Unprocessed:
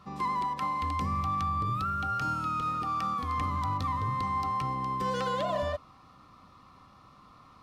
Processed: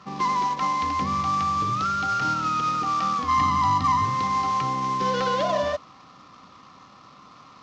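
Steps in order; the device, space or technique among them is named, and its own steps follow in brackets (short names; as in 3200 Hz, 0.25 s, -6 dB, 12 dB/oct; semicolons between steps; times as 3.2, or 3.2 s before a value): early wireless headset (HPF 150 Hz 12 dB/oct; CVSD 32 kbps); 3.28–4.05 comb 1 ms, depth 70%; gain +7 dB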